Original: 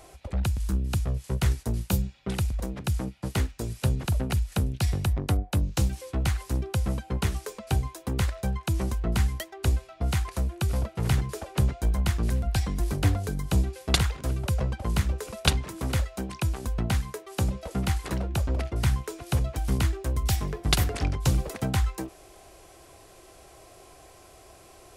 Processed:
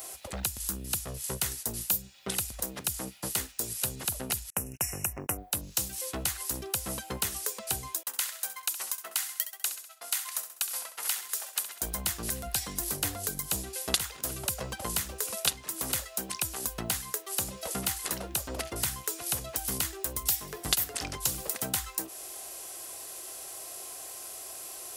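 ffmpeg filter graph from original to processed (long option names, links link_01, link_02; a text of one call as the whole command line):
ffmpeg -i in.wav -filter_complex "[0:a]asettb=1/sr,asplit=3[link_01][link_02][link_03];[link_01]atrim=end=4.504[link_04];[link_02]atrim=start=4.5:end=5.38,asetpts=PTS-STARTPTS,afade=type=in:duration=0.004:curve=qsin,afade=type=out:start_time=0.876:duration=0.004:curve=qsin,asuperstop=centerf=3900:order=20:qfactor=1.6,equalizer=frequency=3200:width=4.8:gain=7,agate=range=-39dB:threshold=-34dB:ratio=16:release=100:detection=peak[link_05];[link_03]atrim=start=5.376[link_06];[link_04][link_05]acrossfade=duration=0.004:curve1=hsin:curve2=qsin[link_07];[link_07][link_06]acrossfade=duration=0.004:curve1=qsin:curve2=hsin,asettb=1/sr,asplit=3[link_08][link_09][link_10];[link_08]atrim=end=8.034[link_11];[link_09]atrim=start=8.03:end=11.81,asetpts=PTS-STARTPTS,afade=type=in:duration=0.004:curve=qsin,afade=type=out:start_time=3.776:duration=0.004:curve=qsin,highpass=1100,agate=range=-33dB:threshold=-45dB:ratio=3:release=100:detection=peak,aecho=1:1:66|132|198|264:0.251|0.105|0.0443|0.0186,atrim=end_sample=166698[link_12];[link_10]atrim=start=11.806[link_13];[link_11][link_12]acrossfade=duration=0.004:curve1=hsin:curve2=qsin[link_14];[link_14][link_13]acrossfade=duration=0.004:curve1=qsin:curve2=hsin,aemphasis=mode=production:type=riaa,bandreject=frequency=2300:width=20,acompressor=threshold=-33dB:ratio=2.5,volume=2.5dB" out.wav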